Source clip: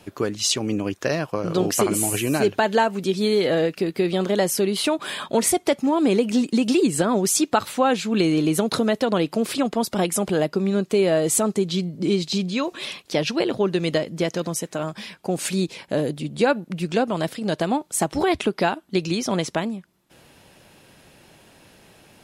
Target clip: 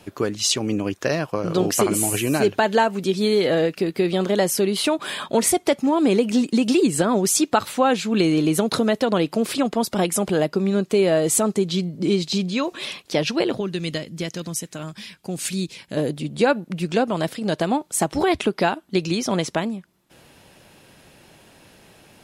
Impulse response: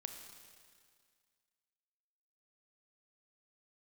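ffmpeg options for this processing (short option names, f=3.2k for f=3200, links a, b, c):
-filter_complex "[0:a]asettb=1/sr,asplit=3[a][b][c];[a]atrim=end=13.604[d];[b]atrim=start=13.6:end=15.97,asetpts=PTS-STARTPTS,afade=t=in:d=0.004:c=qsin,afade=t=out:st=2.366:d=0.004:c=qsin,equalizer=f=670:w=0.51:g=-10.5[e];[c]atrim=start=15.966[f];[d][e]acrossfade=d=0.004:c1=hsin:c2=qsin[g];[g][f]acrossfade=d=0.004:c1=qsin:c2=hsin,volume=1dB"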